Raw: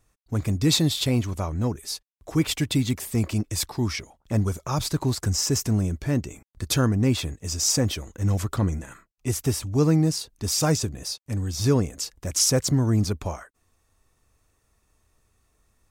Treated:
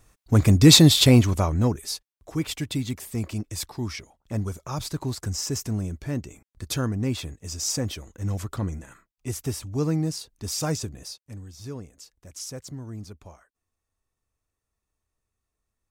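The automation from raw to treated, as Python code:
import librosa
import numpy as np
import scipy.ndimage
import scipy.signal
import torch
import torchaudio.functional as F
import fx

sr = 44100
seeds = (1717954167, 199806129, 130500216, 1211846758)

y = fx.gain(x, sr, db=fx.line((1.12, 8.0), (1.82, 2.0), (2.32, -5.0), (10.98, -5.0), (11.58, -16.0)))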